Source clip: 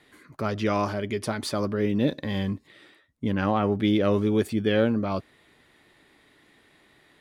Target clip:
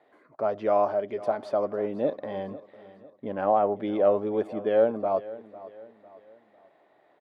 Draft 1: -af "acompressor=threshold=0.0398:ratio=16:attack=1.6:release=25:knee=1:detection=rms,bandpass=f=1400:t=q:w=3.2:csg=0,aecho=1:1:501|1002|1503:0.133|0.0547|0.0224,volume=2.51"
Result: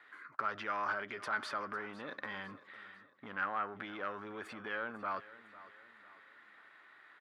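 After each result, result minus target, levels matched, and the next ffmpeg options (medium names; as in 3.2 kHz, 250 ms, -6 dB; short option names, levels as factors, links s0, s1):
compression: peak gain reduction +13.5 dB; 500 Hz band -9.0 dB
-af "bandpass=f=1400:t=q:w=3.2:csg=0,aecho=1:1:501|1002|1503:0.133|0.0547|0.0224,volume=2.51"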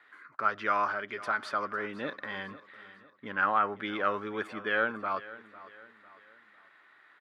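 500 Hz band -8.0 dB
-af "bandpass=f=660:t=q:w=3.2:csg=0,aecho=1:1:501|1002|1503:0.133|0.0547|0.0224,volume=2.51"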